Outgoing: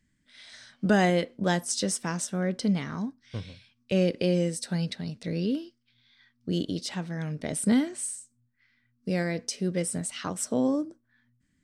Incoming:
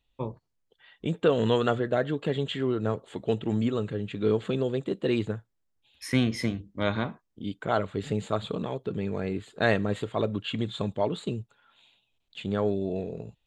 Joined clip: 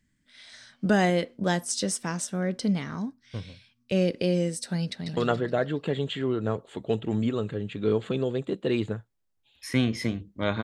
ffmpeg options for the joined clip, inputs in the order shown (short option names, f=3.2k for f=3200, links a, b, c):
-filter_complex "[0:a]apad=whole_dur=10.63,atrim=end=10.63,atrim=end=5.172[a];[1:a]atrim=start=1.558:end=7.02[b];[a][b]acrossfade=d=0.004:c1=hsin:c2=hsin,asplit=2[c][d];[d]afade=t=in:st=4.92:d=0.01,afade=t=out:st=5.17:d=0.01,aecho=0:1:140|280|420|560|700|840|980|1120:0.749894|0.412442|0.226843|0.124764|0.06862|0.037741|0.0207576|0.0114167[e];[c][e]amix=inputs=2:normalize=0"